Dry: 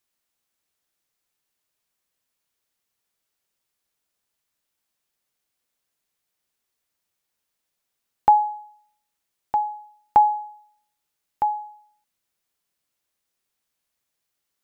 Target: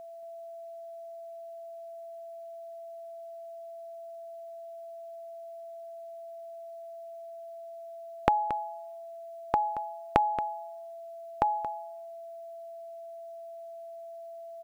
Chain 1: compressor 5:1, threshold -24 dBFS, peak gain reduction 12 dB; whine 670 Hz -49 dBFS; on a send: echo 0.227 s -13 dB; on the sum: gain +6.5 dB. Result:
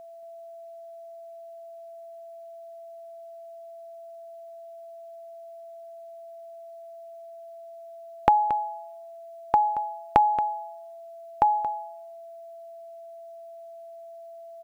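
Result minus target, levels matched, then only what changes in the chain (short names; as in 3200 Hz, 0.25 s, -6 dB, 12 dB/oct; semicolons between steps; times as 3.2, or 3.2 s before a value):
1000 Hz band -5.5 dB
add after compressor: bell 850 Hz -6.5 dB 0.45 oct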